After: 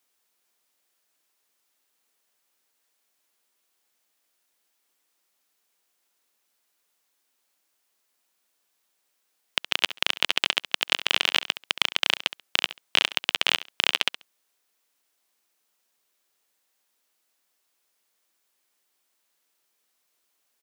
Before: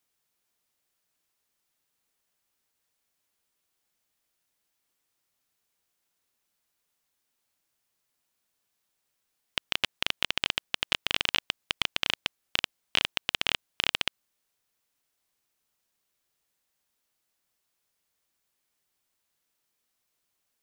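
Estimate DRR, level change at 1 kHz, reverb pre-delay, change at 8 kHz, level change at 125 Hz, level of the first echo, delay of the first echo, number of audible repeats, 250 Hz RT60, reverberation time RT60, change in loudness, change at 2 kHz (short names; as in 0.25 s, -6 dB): none, +5.0 dB, none, +5.0 dB, n/a, -14.5 dB, 68 ms, 2, none, none, +5.0 dB, +5.0 dB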